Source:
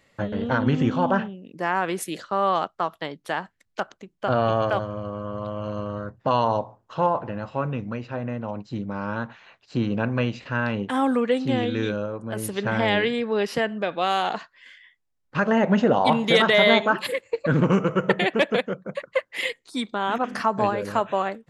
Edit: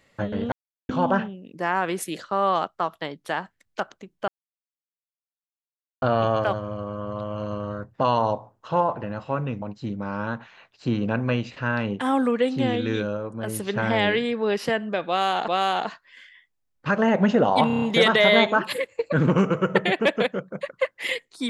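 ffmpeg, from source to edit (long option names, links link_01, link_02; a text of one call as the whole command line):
ffmpeg -i in.wav -filter_complex "[0:a]asplit=11[link_01][link_02][link_03][link_04][link_05][link_06][link_07][link_08][link_09][link_10][link_11];[link_01]atrim=end=0.52,asetpts=PTS-STARTPTS,afade=type=out:start_time=0.516:duration=0.004:curve=hsin[link_12];[link_02]atrim=start=0.52:end=0.89,asetpts=PTS-STARTPTS,volume=0[link_13];[link_03]atrim=start=0.89:end=4.28,asetpts=PTS-STARTPTS,afade=type=in:duration=0.004:curve=hsin,afade=type=out:start_time=3.386:duration=0.004:curve=hsin,apad=pad_dur=1.74[link_14];[link_04]atrim=start=4.28:end=7.882,asetpts=PTS-STARTPTS,afade=type=in:duration=0.004:curve=hsin[link_15];[link_05]atrim=start=8.508:end=14.372[link_16];[link_06]atrim=start=13.968:end=16.192[link_17];[link_07]atrim=start=16.158:end=16.192[link_18];[link_08]atrim=start=16.158:end=16.192[link_19];[link_09]atrim=start=16.158:end=16.192[link_20];[link_10]atrim=start=16.158:end=16.192[link_21];[link_11]atrim=start=16.158[link_22];[link_12][link_13][link_14][link_15]concat=n=4:v=0:a=1[link_23];[link_23][link_16]acrossfade=duration=0.004:curve1=hsin:curve2=hsin[link_24];[link_24][link_17]acrossfade=duration=0.004:curve1=hsin:curve2=hsin[link_25];[link_25][link_18]acrossfade=duration=0.004:curve1=hsin:curve2=hsin[link_26];[link_26][link_19]acrossfade=duration=0.004:curve1=hsin:curve2=hsin[link_27];[link_27][link_20]acrossfade=duration=0.004:curve1=hsin:curve2=hsin[link_28];[link_28][link_21]acrossfade=duration=0.004:curve1=hsin:curve2=hsin[link_29];[link_29][link_22]acrossfade=duration=0.004:curve1=hsin:curve2=hsin" out.wav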